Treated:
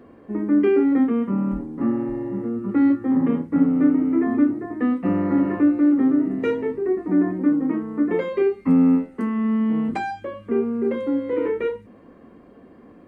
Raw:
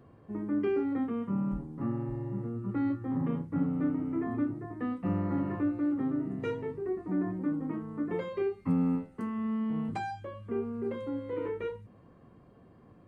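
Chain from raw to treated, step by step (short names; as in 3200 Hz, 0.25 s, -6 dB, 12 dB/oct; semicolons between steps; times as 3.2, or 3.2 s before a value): ten-band EQ 125 Hz -12 dB, 250 Hz +9 dB, 500 Hz +4 dB, 2000 Hz +6 dB; gain +6 dB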